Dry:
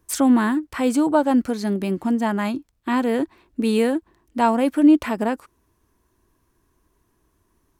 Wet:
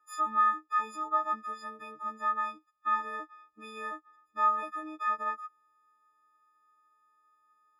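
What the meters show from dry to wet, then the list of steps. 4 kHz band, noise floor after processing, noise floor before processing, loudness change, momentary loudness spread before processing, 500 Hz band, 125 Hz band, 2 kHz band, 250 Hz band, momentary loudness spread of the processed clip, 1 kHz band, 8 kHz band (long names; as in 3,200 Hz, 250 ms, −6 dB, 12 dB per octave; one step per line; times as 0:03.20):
−17.0 dB, −72 dBFS, −68 dBFS, −11.0 dB, 11 LU, −23.0 dB, can't be measured, −7.5 dB, −32.0 dB, 17 LU, −3.0 dB, below −20 dB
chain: every partial snapped to a pitch grid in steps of 6 semitones
in parallel at +1.5 dB: downward compressor, threshold −26 dBFS, peak gain reduction 15.5 dB
on the sum: resonant band-pass 1,300 Hz, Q 12
level +1 dB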